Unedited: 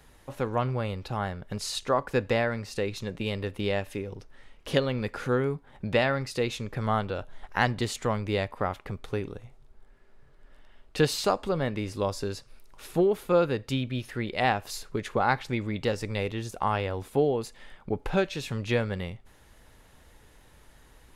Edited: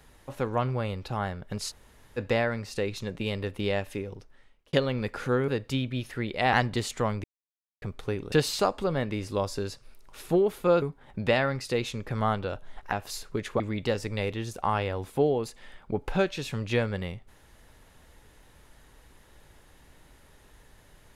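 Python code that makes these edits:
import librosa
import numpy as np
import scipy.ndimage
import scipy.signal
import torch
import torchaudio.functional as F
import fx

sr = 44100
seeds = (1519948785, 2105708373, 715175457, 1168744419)

y = fx.edit(x, sr, fx.room_tone_fill(start_s=1.7, length_s=0.48, crossfade_s=0.04),
    fx.fade_out_span(start_s=4.02, length_s=0.71),
    fx.swap(start_s=5.48, length_s=2.1, other_s=13.47, other_length_s=1.05),
    fx.silence(start_s=8.29, length_s=0.58),
    fx.cut(start_s=9.37, length_s=1.6),
    fx.cut(start_s=15.2, length_s=0.38), tone=tone)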